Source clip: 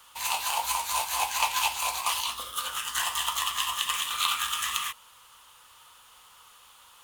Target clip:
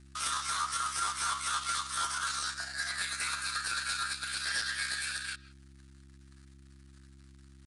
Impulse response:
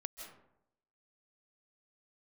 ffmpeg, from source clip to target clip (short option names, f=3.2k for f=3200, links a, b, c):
-filter_complex "[0:a]atempo=0.68,highpass=f=350:w=0.5412,highpass=f=350:w=1.3066,equalizer=f=2.5k:t=o:w=1.1:g=-7,alimiter=limit=-22dB:level=0:latency=1:release=458,aeval=exprs='sgn(val(0))*max(abs(val(0))-0.00251,0)':c=same,tiltshelf=f=680:g=-7.5,aresample=16000,asoftclip=type=tanh:threshold=-27dB,aresample=44100,aeval=exprs='val(0)+0.00141*(sin(2*PI*50*n/s)+sin(2*PI*2*50*n/s)/2+sin(2*PI*3*50*n/s)/3+sin(2*PI*4*50*n/s)/4+sin(2*PI*5*50*n/s)/5)':c=same,asetrate=59535,aresample=44100,asplit=2[a][b];[1:a]atrim=start_sample=2205,afade=t=out:st=0.22:d=0.01,atrim=end_sample=10143,lowpass=4.1k[c];[b][c]afir=irnorm=-1:irlink=0,volume=-3.5dB[d];[a][d]amix=inputs=2:normalize=0"